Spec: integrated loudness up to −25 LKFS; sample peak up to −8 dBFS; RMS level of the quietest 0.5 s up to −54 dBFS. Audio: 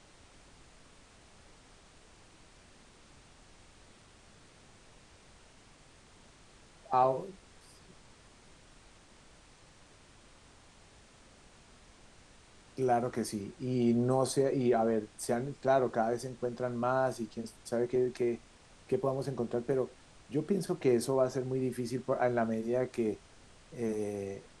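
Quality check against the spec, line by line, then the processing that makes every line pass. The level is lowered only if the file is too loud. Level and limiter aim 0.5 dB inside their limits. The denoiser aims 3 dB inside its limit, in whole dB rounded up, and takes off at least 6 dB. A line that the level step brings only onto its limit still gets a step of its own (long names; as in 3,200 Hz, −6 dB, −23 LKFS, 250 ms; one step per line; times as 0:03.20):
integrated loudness −32.5 LKFS: in spec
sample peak −15.0 dBFS: in spec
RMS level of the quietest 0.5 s −59 dBFS: in spec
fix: no processing needed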